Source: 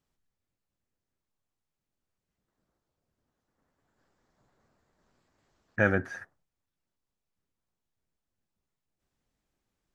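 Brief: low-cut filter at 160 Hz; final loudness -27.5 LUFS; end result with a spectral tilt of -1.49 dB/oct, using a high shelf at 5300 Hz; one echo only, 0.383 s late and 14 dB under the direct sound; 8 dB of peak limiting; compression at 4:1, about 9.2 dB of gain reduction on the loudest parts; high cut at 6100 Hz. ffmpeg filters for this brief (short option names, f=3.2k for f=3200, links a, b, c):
-af "highpass=160,lowpass=6.1k,highshelf=f=5.3k:g=-8.5,acompressor=threshold=-30dB:ratio=4,alimiter=level_in=1dB:limit=-24dB:level=0:latency=1,volume=-1dB,aecho=1:1:383:0.2,volume=15dB"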